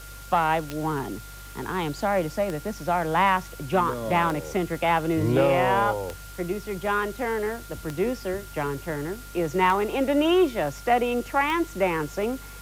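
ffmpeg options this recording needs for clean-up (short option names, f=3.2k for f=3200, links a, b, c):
-af "adeclick=t=4,bandreject=f=49.2:t=h:w=4,bandreject=f=98.4:t=h:w=4,bandreject=f=147.6:t=h:w=4,bandreject=f=1.4k:w=30,afwtdn=0.005"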